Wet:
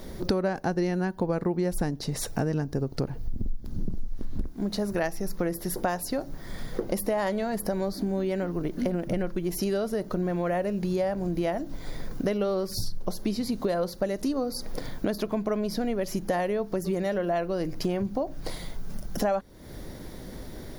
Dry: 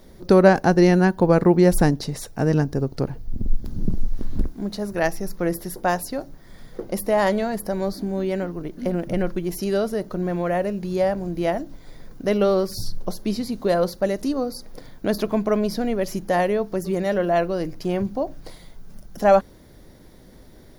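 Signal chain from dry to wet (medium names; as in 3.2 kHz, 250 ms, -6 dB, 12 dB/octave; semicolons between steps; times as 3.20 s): compression 6:1, threshold -33 dBFS, peak gain reduction 22.5 dB; trim +7.5 dB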